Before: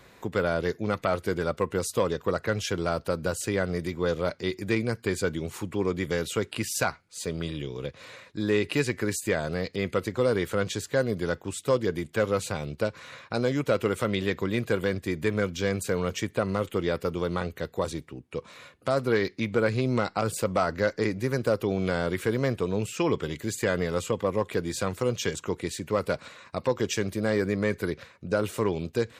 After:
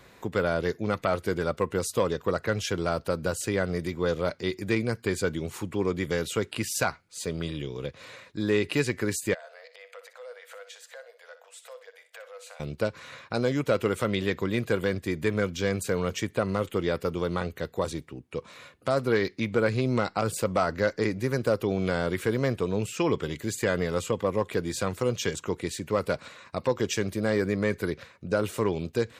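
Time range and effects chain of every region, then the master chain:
0:09.34–0:12.60: downward compressor 4 to 1, threshold −38 dBFS + Chebyshev high-pass with heavy ripple 470 Hz, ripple 6 dB + flutter between parallel walls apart 10.5 metres, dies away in 0.31 s
whole clip: no processing

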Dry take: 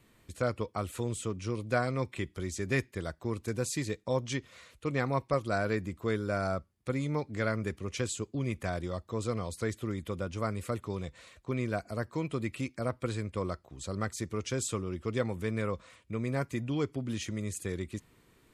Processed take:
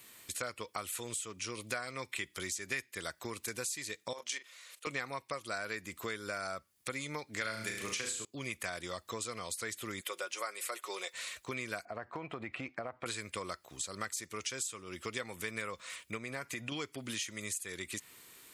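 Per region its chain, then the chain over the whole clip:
0:04.13–0:04.87: high-pass filter 430 Hz + double-tracking delay 38 ms −9.5 dB + output level in coarse steps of 13 dB
0:07.41–0:08.25: flutter between parallel walls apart 6.2 metres, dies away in 0.49 s + multiband upward and downward compressor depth 70%
0:10.01–0:11.14: high-pass filter 390 Hz 24 dB per octave + comb filter 5.5 ms, depth 46%
0:11.85–0:13.06: low-pass filter 1,600 Hz + parametric band 740 Hz +10 dB 0.41 octaves + downward compressor, threshold −32 dBFS
0:16.17–0:16.72: high-shelf EQ 4,900 Hz −7 dB + downward compressor 4 to 1, threshold −33 dBFS
whole clip: spectral tilt +4 dB per octave; downward compressor 6 to 1, threshold −42 dBFS; dynamic equaliser 2,000 Hz, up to +4 dB, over −60 dBFS, Q 1; level +4.5 dB

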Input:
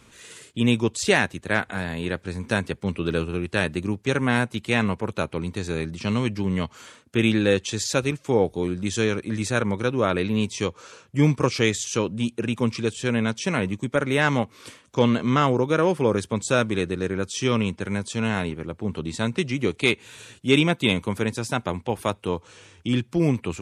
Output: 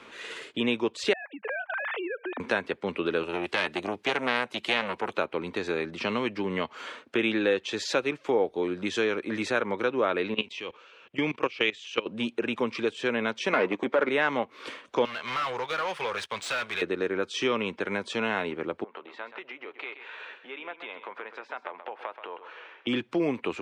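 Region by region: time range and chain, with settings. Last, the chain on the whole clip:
0:01.13–0:02.40: three sine waves on the formant tracks + downward compressor 12 to 1, threshold −35 dBFS
0:03.23–0:05.17: high-shelf EQ 2,700 Hz +10.5 dB + saturating transformer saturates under 1,900 Hz
0:10.34–0:12.06: low-pass filter 8,700 Hz + parametric band 2,800 Hz +10.5 dB 0.71 octaves + output level in coarse steps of 20 dB
0:13.53–0:14.09: transient designer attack −10 dB, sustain −5 dB + parametric band 350 Hz +5.5 dB 2.1 octaves + mid-hump overdrive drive 19 dB, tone 2,200 Hz, clips at −7 dBFS
0:15.05–0:16.82: guitar amp tone stack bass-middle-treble 10-0-10 + leveller curve on the samples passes 2 + gain into a clipping stage and back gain 28.5 dB
0:18.84–0:22.87: downward compressor, threshold −35 dBFS + band-pass filter 660–2,100 Hz + single-tap delay 129 ms −11.5 dB
whole clip: three-way crossover with the lows and the highs turned down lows −23 dB, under 280 Hz, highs −21 dB, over 3,900 Hz; downward compressor 2 to 1, threshold −39 dBFS; level +8.5 dB

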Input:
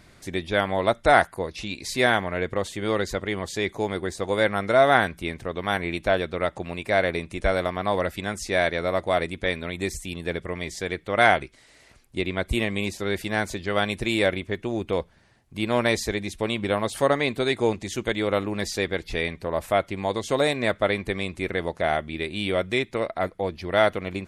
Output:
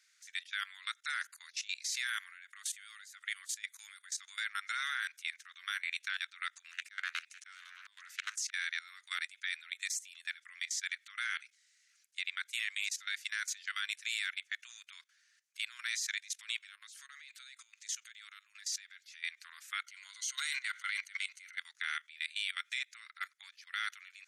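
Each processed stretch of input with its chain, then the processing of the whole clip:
0:02.07–0:04.10: high shelf with overshoot 7,800 Hz +7 dB, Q 1.5 + shaped tremolo triangle 1.8 Hz, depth 55%
0:06.71–0:08.54: parametric band 380 Hz −6 dB 0.27 octaves + volume swells 244 ms + highs frequency-modulated by the lows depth 0.38 ms
0:16.62–0:19.24: low-shelf EQ 350 Hz −7 dB + downward compressor 10 to 1, threshold −33 dBFS
0:19.86–0:21.59: EQ curve with evenly spaced ripples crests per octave 1.9, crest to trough 9 dB + transient designer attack −10 dB, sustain +8 dB
whole clip: Butterworth high-pass 1,400 Hz 48 dB per octave; parametric band 6,300 Hz +10.5 dB 0.68 octaves; output level in coarse steps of 17 dB; level −2.5 dB

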